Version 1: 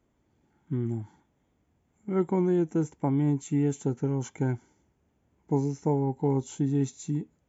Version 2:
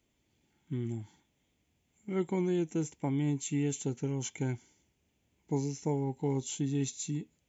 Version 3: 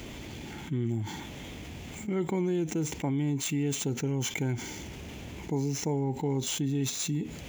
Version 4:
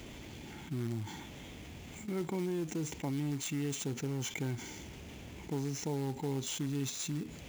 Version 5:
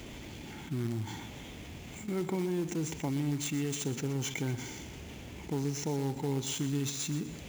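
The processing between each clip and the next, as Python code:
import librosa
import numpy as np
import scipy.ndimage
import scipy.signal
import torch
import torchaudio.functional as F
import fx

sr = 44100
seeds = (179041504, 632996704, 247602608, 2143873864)

y1 = fx.high_shelf_res(x, sr, hz=1900.0, db=10.0, q=1.5)
y1 = F.gain(torch.from_numpy(y1), -5.5).numpy()
y2 = scipy.signal.medfilt(y1, 5)
y2 = fx.env_flatten(y2, sr, amount_pct=70)
y3 = fx.quant_float(y2, sr, bits=2)
y3 = F.gain(torch.from_numpy(y3), -6.0).numpy()
y4 = fx.echo_feedback(y3, sr, ms=123, feedback_pct=43, wet_db=-13)
y4 = F.gain(torch.from_numpy(y4), 2.5).numpy()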